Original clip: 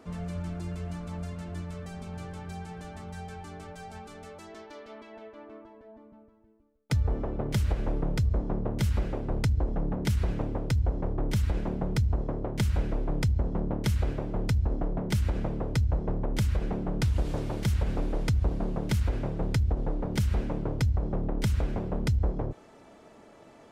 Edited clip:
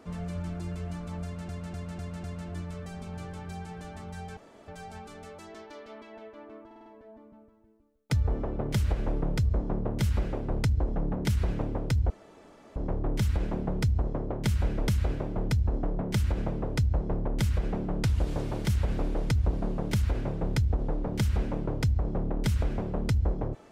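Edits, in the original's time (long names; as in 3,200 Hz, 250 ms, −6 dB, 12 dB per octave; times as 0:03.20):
0:01.24–0:01.49: repeat, 5 plays
0:03.37–0:03.68: fill with room tone
0:05.66: stutter 0.05 s, 5 plays
0:10.90: splice in room tone 0.66 s
0:13.02–0:13.86: remove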